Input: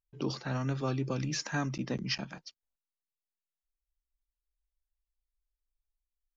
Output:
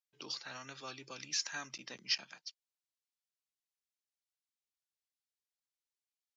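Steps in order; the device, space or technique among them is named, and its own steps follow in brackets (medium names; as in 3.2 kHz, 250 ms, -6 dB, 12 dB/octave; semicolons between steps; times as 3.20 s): piezo pickup straight into a mixer (low-pass 5.2 kHz 12 dB/octave; differentiator); trim +7.5 dB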